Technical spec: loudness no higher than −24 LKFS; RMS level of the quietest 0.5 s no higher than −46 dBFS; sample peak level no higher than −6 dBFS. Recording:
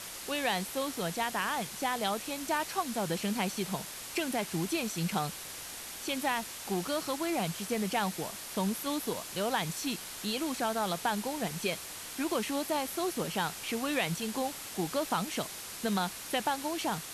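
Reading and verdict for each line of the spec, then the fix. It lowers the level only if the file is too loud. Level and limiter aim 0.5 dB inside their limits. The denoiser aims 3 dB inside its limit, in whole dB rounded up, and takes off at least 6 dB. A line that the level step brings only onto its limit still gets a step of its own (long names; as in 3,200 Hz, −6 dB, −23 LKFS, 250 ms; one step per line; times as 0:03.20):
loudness −33.0 LKFS: in spec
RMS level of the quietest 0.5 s −43 dBFS: out of spec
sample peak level −17.5 dBFS: in spec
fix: broadband denoise 6 dB, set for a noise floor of −43 dBFS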